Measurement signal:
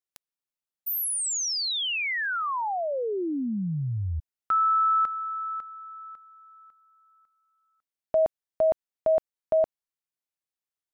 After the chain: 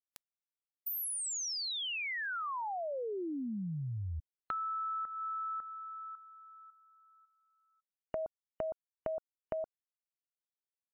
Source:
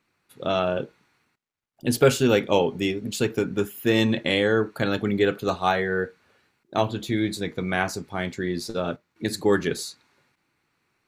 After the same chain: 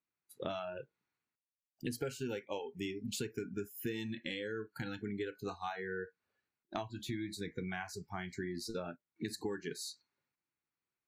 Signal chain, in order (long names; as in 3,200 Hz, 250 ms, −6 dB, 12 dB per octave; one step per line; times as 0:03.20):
downward compressor 8 to 1, threshold −33 dBFS
noise reduction from a noise print of the clip's start 21 dB
level −3 dB